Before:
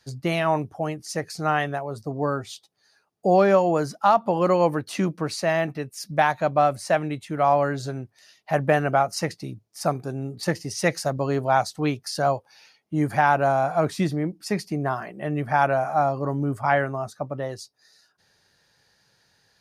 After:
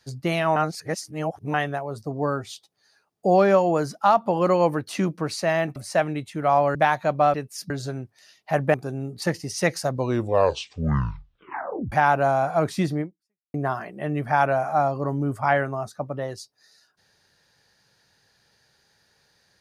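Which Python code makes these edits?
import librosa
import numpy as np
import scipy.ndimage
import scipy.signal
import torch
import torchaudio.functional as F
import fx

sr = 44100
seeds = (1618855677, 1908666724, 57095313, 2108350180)

y = fx.edit(x, sr, fx.reverse_span(start_s=0.56, length_s=0.98),
    fx.swap(start_s=5.76, length_s=0.36, other_s=6.71, other_length_s=0.99),
    fx.cut(start_s=8.74, length_s=1.21),
    fx.tape_stop(start_s=11.08, length_s=2.05),
    fx.fade_out_span(start_s=14.22, length_s=0.53, curve='exp'), tone=tone)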